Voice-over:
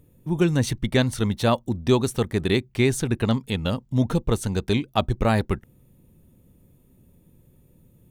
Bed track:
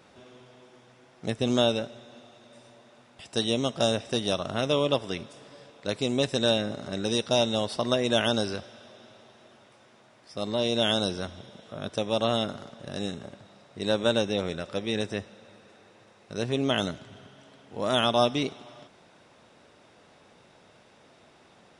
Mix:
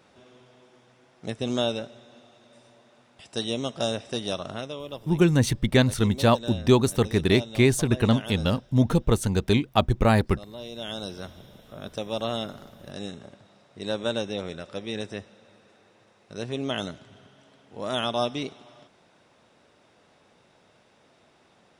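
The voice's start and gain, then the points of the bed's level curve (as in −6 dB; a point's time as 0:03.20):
4.80 s, +1.0 dB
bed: 0:04.51 −2.5 dB
0:04.75 −12.5 dB
0:10.74 −12.5 dB
0:11.28 −3.5 dB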